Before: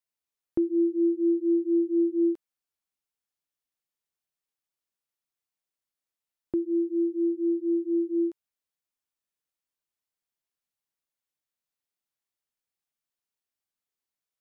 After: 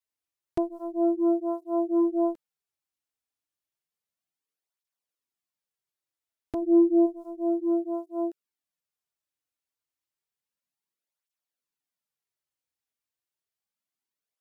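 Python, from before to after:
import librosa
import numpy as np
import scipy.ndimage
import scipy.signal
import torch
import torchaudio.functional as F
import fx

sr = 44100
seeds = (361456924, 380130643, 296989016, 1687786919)

y = fx.tracing_dist(x, sr, depth_ms=0.43)
y = fx.small_body(y, sr, hz=(230.0, 370.0), ring_ms=45, db=11, at=(6.61, 7.05), fade=0.02)
y = fx.flanger_cancel(y, sr, hz=0.31, depth_ms=5.8)
y = y * librosa.db_to_amplitude(1.5)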